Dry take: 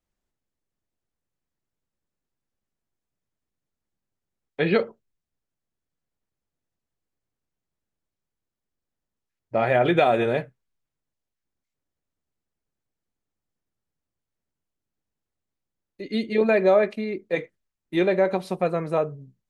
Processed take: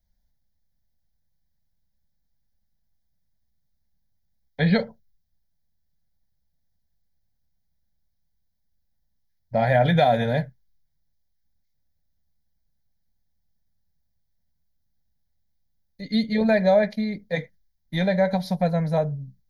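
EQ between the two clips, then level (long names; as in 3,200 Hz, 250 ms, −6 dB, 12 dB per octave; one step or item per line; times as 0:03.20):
bass and treble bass +14 dB, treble +9 dB
parametric band 110 Hz −7.5 dB 0.6 octaves
phaser with its sweep stopped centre 1,800 Hz, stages 8
+1.5 dB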